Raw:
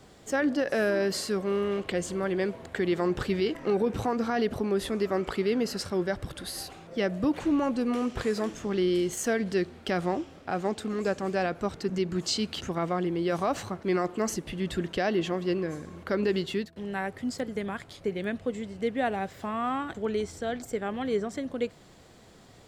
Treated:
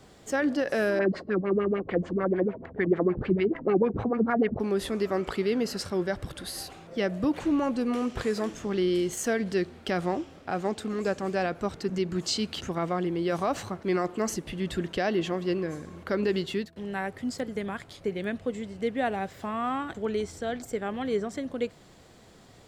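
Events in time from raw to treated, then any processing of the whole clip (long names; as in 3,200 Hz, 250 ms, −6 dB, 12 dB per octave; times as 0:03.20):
0:00.99–0:04.60: auto-filter low-pass sine 6.7 Hz 200–2,300 Hz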